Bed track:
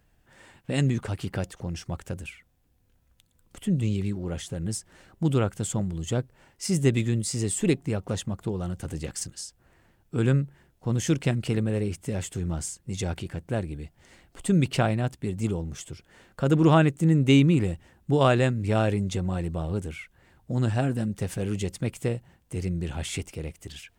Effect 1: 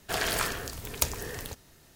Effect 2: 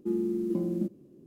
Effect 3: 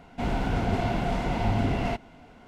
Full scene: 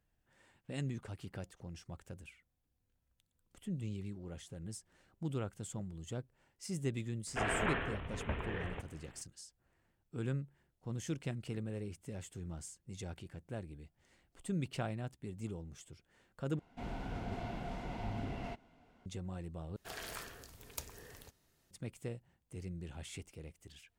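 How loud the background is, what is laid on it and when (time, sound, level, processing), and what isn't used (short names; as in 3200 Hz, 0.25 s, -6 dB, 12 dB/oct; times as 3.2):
bed track -15 dB
7.27 add 1 -2 dB + CVSD 16 kbps
16.59 replace with 3 -15 dB
19.76 replace with 1 -16.5 dB
not used: 2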